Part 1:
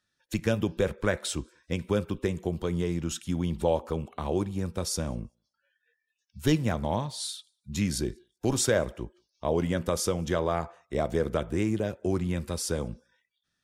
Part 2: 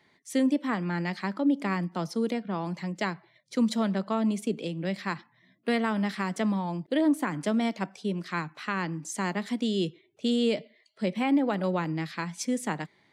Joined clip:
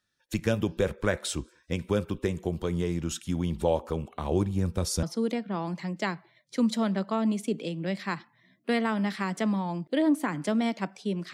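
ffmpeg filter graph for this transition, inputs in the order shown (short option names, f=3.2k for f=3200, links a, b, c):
-filter_complex "[0:a]asettb=1/sr,asplit=3[a][b][c];[a]atrim=end=4.314[d];[b]atrim=start=4.31:end=5.03,asetpts=PTS-STARTPTS,afade=t=in:d=0.004:c=qsin,afade=t=out:st=0.716:d=0.004:c=qsin,lowshelf=f=180:g=7[e];[c]atrim=start=5.026[f];[d][e]acrossfade=d=0.004:c1=hsin:c2=qsin[g];[g][f]acrossfade=d=0.004:c1=qsin:c2=hsin,apad=whole_dur=11.33,atrim=end=11.33,atrim=end=5.032[h];[1:a]atrim=start=2.018:end=8.32[i];[h][i]acrossfade=d=0.004:c1=hsin:c2=hsin"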